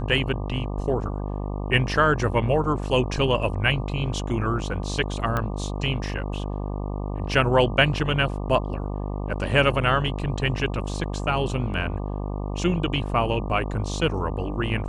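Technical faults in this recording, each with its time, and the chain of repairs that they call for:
mains buzz 50 Hz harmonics 24 −29 dBFS
0:05.37: click −13 dBFS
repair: click removal
hum removal 50 Hz, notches 24

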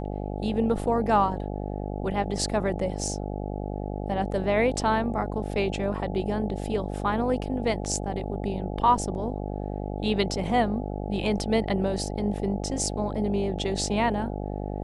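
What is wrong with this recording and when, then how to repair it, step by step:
mains buzz 50 Hz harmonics 17 −32 dBFS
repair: hum removal 50 Hz, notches 17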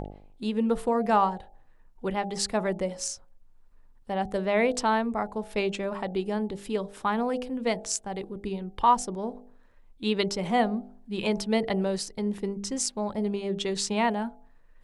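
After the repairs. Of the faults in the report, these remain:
none of them is left

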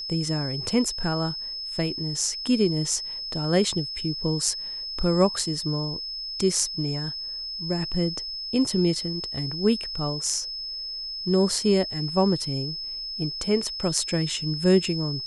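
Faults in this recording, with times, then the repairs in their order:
whistle 5,200 Hz −31 dBFS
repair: notch filter 5,200 Hz, Q 30

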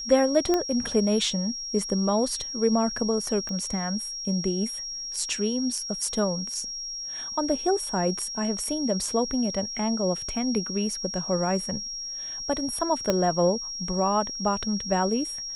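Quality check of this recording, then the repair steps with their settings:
whistle 5,600 Hz −32 dBFS
0:00.54: click −11 dBFS
0:03.49: click −21 dBFS
0:13.10: click −9 dBFS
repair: click removal
notch filter 5,600 Hz, Q 30

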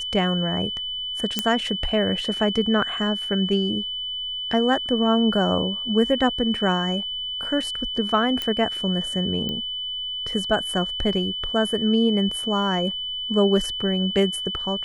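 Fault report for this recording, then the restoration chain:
whistle 3,000 Hz −27 dBFS
0:01.39: click −6 dBFS
0:08.42: click −12 dBFS
0:09.49: click −16 dBFS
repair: click removal
notch filter 3,000 Hz, Q 30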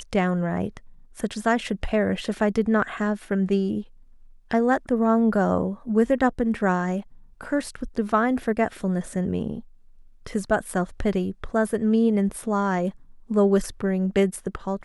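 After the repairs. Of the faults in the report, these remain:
0:01.39: click

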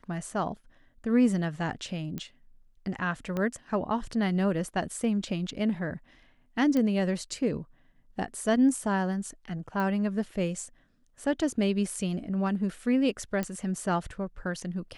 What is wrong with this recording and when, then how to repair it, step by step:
0:02.18: click −21 dBFS
0:03.37: click −19 dBFS
0:06.77: click −17 dBFS
0:09.80: click −21 dBFS
0:13.43: click −17 dBFS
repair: click removal

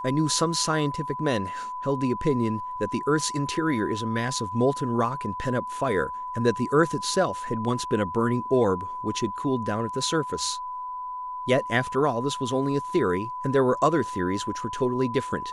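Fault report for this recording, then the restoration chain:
whistle 1,000 Hz −31 dBFS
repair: notch filter 1,000 Hz, Q 30

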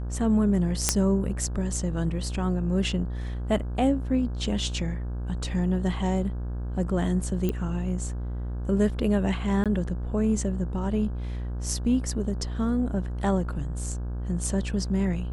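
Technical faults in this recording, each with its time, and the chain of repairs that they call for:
mains buzz 60 Hz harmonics 28 −31 dBFS
0:00.89: click −4 dBFS
0:07.49: click −15 dBFS
0:09.64–0:09.66: drop-out 17 ms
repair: click removal
hum removal 60 Hz, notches 28
repair the gap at 0:09.64, 17 ms

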